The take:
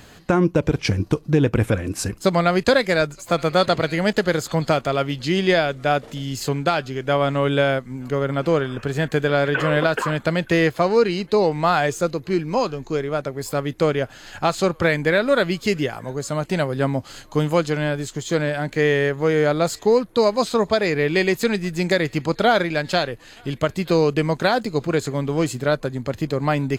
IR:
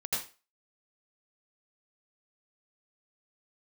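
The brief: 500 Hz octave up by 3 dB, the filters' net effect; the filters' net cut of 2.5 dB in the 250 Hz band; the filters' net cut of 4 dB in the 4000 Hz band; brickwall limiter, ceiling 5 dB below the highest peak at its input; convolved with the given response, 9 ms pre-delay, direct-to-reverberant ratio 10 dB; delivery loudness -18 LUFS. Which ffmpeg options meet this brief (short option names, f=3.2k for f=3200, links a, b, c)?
-filter_complex "[0:a]equalizer=f=250:t=o:g=-6,equalizer=f=500:t=o:g=5,equalizer=f=4k:t=o:g=-5,alimiter=limit=-9dB:level=0:latency=1,asplit=2[a][b];[1:a]atrim=start_sample=2205,adelay=9[c];[b][c]afir=irnorm=-1:irlink=0,volume=-15dB[d];[a][d]amix=inputs=2:normalize=0,volume=2.5dB"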